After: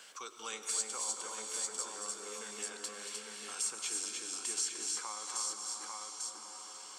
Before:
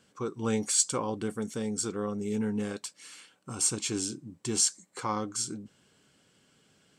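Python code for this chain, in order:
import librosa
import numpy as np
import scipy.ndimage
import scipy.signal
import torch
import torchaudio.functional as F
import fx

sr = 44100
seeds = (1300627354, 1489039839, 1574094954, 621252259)

p1 = scipy.signal.sosfilt(scipy.signal.butter(2, 850.0, 'highpass', fs=sr, output='sos'), x)
p2 = p1 + fx.echo_multitap(p1, sr, ms=(229, 304, 847), db=(-11.0, -5.0, -6.5), dry=0)
p3 = fx.rev_freeverb(p2, sr, rt60_s=4.3, hf_ratio=0.9, predelay_ms=50, drr_db=7.0)
p4 = fx.band_squash(p3, sr, depth_pct=70)
y = p4 * librosa.db_to_amplitude(-7.0)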